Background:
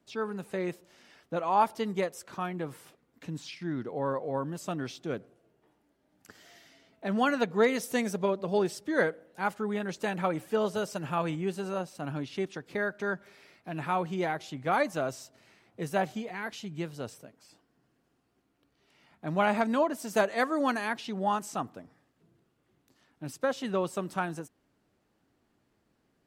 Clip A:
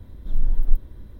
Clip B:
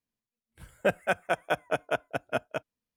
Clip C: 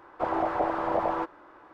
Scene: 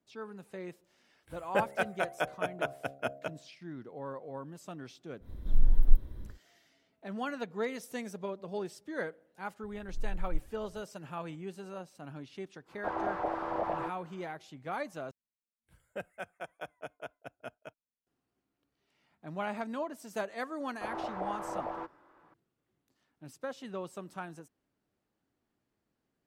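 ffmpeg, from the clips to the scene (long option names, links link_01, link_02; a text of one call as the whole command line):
ffmpeg -i bed.wav -i cue0.wav -i cue1.wav -i cue2.wav -filter_complex "[2:a]asplit=2[link_01][link_02];[1:a]asplit=2[link_03][link_04];[3:a]asplit=2[link_05][link_06];[0:a]volume=-10dB[link_07];[link_01]bandreject=frequency=68.76:width_type=h:width=4,bandreject=frequency=137.52:width_type=h:width=4,bandreject=frequency=206.28:width_type=h:width=4,bandreject=frequency=275.04:width_type=h:width=4,bandreject=frequency=343.8:width_type=h:width=4,bandreject=frequency=412.56:width_type=h:width=4,bandreject=frequency=481.32:width_type=h:width=4,bandreject=frequency=550.08:width_type=h:width=4,bandreject=frequency=618.84:width_type=h:width=4,bandreject=frequency=687.6:width_type=h:width=4,bandreject=frequency=756.36:width_type=h:width=4[link_08];[link_07]asplit=2[link_09][link_10];[link_09]atrim=end=15.114[link_11];[link_02]atrim=end=2.96,asetpts=PTS-STARTPTS,volume=-15dB[link_12];[link_10]atrim=start=18.066[link_13];[link_08]atrim=end=2.96,asetpts=PTS-STARTPTS,volume=-4dB,afade=type=in:duration=0.004:curve=hsin,afade=type=out:start_time=2.956:duration=0.004:curve=hsin,adelay=700[link_14];[link_03]atrim=end=1.19,asetpts=PTS-STARTPTS,volume=-3dB,afade=type=in:duration=0.1,afade=type=out:start_time=1.09:duration=0.1,adelay=5200[link_15];[link_04]atrim=end=1.19,asetpts=PTS-STARTPTS,volume=-15.5dB,afade=type=in:duration=0.004:curve=hsin,afade=type=out:start_time=1.186:duration=0.004:curve=hsin,adelay=9630[link_16];[link_05]atrim=end=1.73,asetpts=PTS-STARTPTS,volume=-6.5dB,afade=type=in:duration=0.1,afade=type=out:start_time=1.63:duration=0.1,adelay=12640[link_17];[link_06]atrim=end=1.73,asetpts=PTS-STARTPTS,volume=-10.5dB,afade=type=in:duration=0.004:curve=hsin,afade=type=out:start_time=1.726:duration=0.004:curve=hsin,adelay=20610[link_18];[link_11][link_12]acrossfade=duration=0.004:curve1=hsin:curve2=hsin[link_19];[link_19][link_13]acrossfade=duration=0.004:curve1=hsin:curve2=hsin[link_20];[link_20][link_14][link_15][link_16][link_17][link_18]amix=inputs=6:normalize=0" out.wav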